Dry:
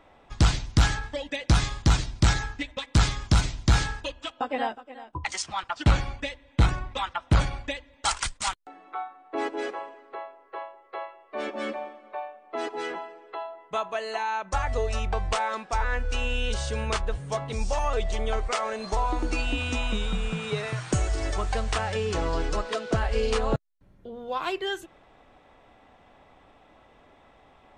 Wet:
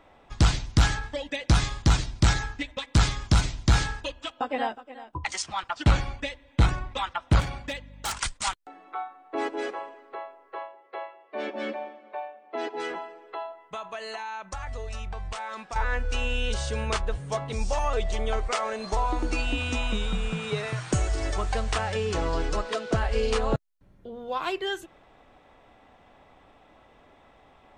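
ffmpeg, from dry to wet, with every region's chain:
ffmpeg -i in.wav -filter_complex "[0:a]asettb=1/sr,asplit=3[link_01][link_02][link_03];[link_01]atrim=end=7.404[link_04];[link_02]atrim=start=7.4:end=8.19,asetpts=PTS-STARTPTS,afade=type=in:duration=0.004:curve=qsin,afade=type=out:start_time=0.786:duration=0.004:curve=qsin,highpass=frequency=47:width=0.5412,highpass=frequency=47:width=1.3066,asoftclip=type=hard:threshold=-27dB,aeval=exprs='val(0)+0.00562*(sin(2*PI*50*n/s)+sin(2*PI*2*50*n/s)/2+sin(2*PI*3*50*n/s)/3+sin(2*PI*4*50*n/s)/4+sin(2*PI*5*50*n/s)/5)':channel_layout=same[link_05];[link_03]atrim=start=8.186[link_06];[link_04][link_05]acrossfade=duration=0.004:curve1=hsin:curve2=qsin[link_07];[link_07][link_06]acrossfade=duration=0.004:curve1=qsin:curve2=hsin,asettb=1/sr,asplit=3[link_08][link_09][link_10];[link_08]atrim=end=10.674[link_11];[link_09]atrim=start=10.67:end=12.8,asetpts=PTS-STARTPTS,afade=type=in:duration=0.004:curve=qsin,afade=type=out:start_time=2.126:duration=0.004:curve=qsin,highpass=130,lowpass=5100,equalizer=frequency=1200:width=7.2:gain=-9[link_12];[link_10]atrim=start=12.796[link_13];[link_11][link_12]acrossfade=duration=0.004:curve1=hsin:curve2=qsin[link_14];[link_14][link_13]acrossfade=duration=0.004:curve1=qsin:curve2=hsin,asettb=1/sr,asplit=3[link_15][link_16][link_17];[link_15]atrim=end=13.524[link_18];[link_16]atrim=start=13.52:end=15.76,asetpts=PTS-STARTPTS,afade=type=in:duration=0.004:curve=qsin,afade=type=out:start_time=2.236:duration=0.004:curve=qsin,equalizer=frequency=410:width=0.69:gain=-5,acompressor=threshold=-31dB:ratio=5:attack=3.2:release=140:knee=1:detection=peak[link_19];[link_17]atrim=start=15.756[link_20];[link_18][link_19]acrossfade=duration=0.004:curve1=hsin:curve2=qsin[link_21];[link_21][link_20]acrossfade=duration=0.004:curve1=qsin:curve2=hsin" out.wav

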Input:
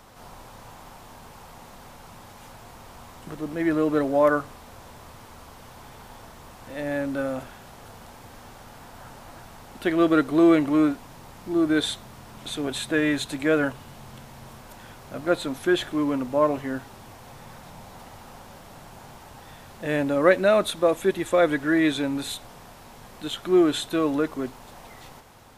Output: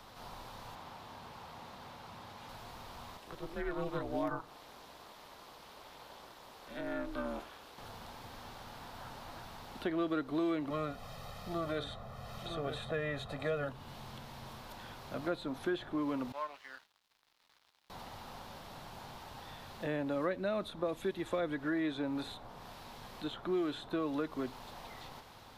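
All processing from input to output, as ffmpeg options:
ffmpeg -i in.wav -filter_complex "[0:a]asettb=1/sr,asplit=3[link_01][link_02][link_03];[link_01]atrim=end=0.754[link_04];[link_02]atrim=start=0.75:end=2.49,asetpts=PTS-STARTPTS,afade=type=in:duration=0.004:curve=qsin,afade=type=out:start_time=1.736:duration=0.004:curve=qsin,highpass=61,highshelf=frequency=5200:gain=-7[link_05];[link_03]atrim=start=2.486[link_06];[link_04][link_05]acrossfade=duration=0.004:curve1=hsin:curve2=qsin[link_07];[link_07][link_06]acrossfade=duration=0.004:curve1=qsin:curve2=hsin,asettb=1/sr,asplit=3[link_08][link_09][link_10];[link_08]atrim=end=3.174[link_11];[link_09]atrim=start=3.17:end=7.78,asetpts=PTS-STARTPTS,afade=type=in:duration=0.004:curve=qsin,afade=type=out:start_time=4.606:duration=0.004:curve=qsin,highpass=320,aeval=exprs='val(0)*sin(2*PI*170*n/s)':channel_layout=same,afreqshift=-130[link_12];[link_10]atrim=start=7.776[link_13];[link_11][link_12]acrossfade=duration=0.004:curve1=hsin:curve2=qsin[link_14];[link_14][link_13]acrossfade=duration=0.004:curve1=qsin:curve2=hsin,asettb=1/sr,asplit=3[link_15][link_16][link_17];[link_15]atrim=end=10.704[link_18];[link_16]atrim=start=10.7:end=13.69,asetpts=PTS-STARTPTS,afade=type=in:duration=0.004:curve=qsin,afade=type=out:start_time=2.986:duration=0.004:curve=qsin,aecho=1:1:1.6:0.83,atrim=end_sample=131859,aecho=1:1:952:0.299,atrim=end_sample=131859[link_19];[link_17]atrim=start=13.686[link_20];[link_18][link_19]acrossfade=duration=0.004:curve1=hsin:curve2=qsin[link_21];[link_21][link_20]acrossfade=duration=0.004:curve1=qsin:curve2=hsin,asettb=1/sr,asplit=3[link_22][link_23][link_24];[link_22]atrim=end=16.324[link_25];[link_23]atrim=start=16.32:end=17.9,asetpts=PTS-STARTPTS,afade=type=in:duration=0.004:curve=qsin,afade=type=out:start_time=1.576:duration=0.004:curve=qsin,highpass=1500,highshelf=frequency=4400:gain=-11,aeval=exprs='sgn(val(0))*max(abs(val(0))-0.00282,0)':channel_layout=same[link_26];[link_24]atrim=start=17.896[link_27];[link_25][link_26]acrossfade=duration=0.004:curve1=hsin:curve2=qsin[link_28];[link_28][link_27]acrossfade=duration=0.004:curve1=qsin:curve2=hsin,equalizer=frequency=1000:width_type=o:width=1:gain=3,equalizer=frequency=4000:width_type=o:width=1:gain=8,equalizer=frequency=8000:width_type=o:width=1:gain=-5,acrossover=split=290|1600[link_29][link_30][link_31];[link_29]acompressor=threshold=-35dB:ratio=4[link_32];[link_30]acompressor=threshold=-31dB:ratio=4[link_33];[link_31]acompressor=threshold=-46dB:ratio=4[link_34];[link_32][link_33][link_34]amix=inputs=3:normalize=0,volume=-5.5dB" out.wav

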